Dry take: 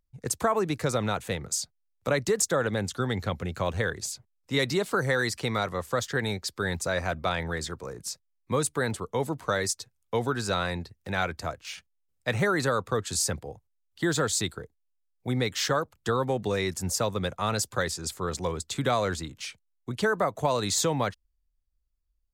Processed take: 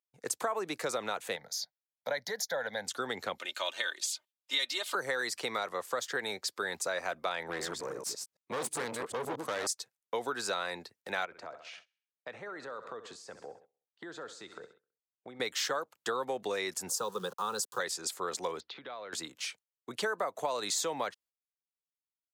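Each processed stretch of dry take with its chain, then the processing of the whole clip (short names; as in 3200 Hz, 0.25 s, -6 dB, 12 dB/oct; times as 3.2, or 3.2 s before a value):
1.36–2.87 HPF 86 Hz + fixed phaser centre 1800 Hz, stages 8
3.38–4.95 HPF 1200 Hz 6 dB/oct + bell 3300 Hz +10.5 dB 0.67 oct + comb 3.3 ms, depth 72%
7.49–9.67 reverse delay 0.11 s, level -6 dB + low shelf 390 Hz +10.5 dB + tube stage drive 26 dB, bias 0.25
11.25–15.4 feedback echo 65 ms, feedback 53%, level -17 dB + compressor, threshold -35 dBFS + tape spacing loss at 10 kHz 21 dB
16.89–17.8 sample gate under -42.5 dBFS + low shelf 180 Hz +7.5 dB + fixed phaser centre 430 Hz, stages 8
18.6–19.13 inverse Chebyshev low-pass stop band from 7600 Hz + compressor 4:1, threshold -41 dBFS
whole clip: gate -54 dBFS, range -14 dB; HPF 430 Hz 12 dB/oct; compressor 3:1, threshold -31 dBFS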